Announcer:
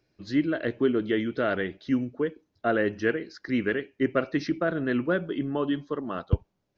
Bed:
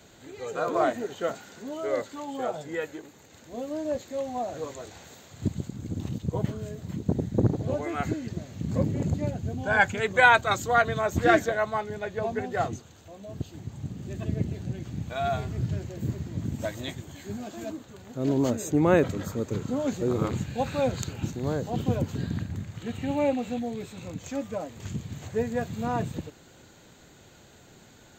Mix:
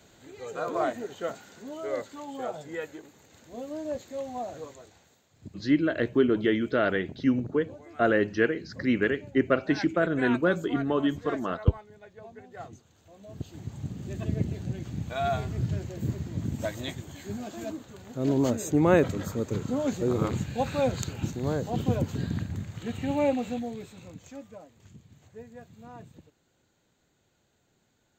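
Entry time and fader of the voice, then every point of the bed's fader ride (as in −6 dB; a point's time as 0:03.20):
5.35 s, +1.5 dB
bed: 0:04.49 −3.5 dB
0:05.24 −17 dB
0:12.44 −17 dB
0:13.65 0 dB
0:23.45 0 dB
0:24.91 −17.5 dB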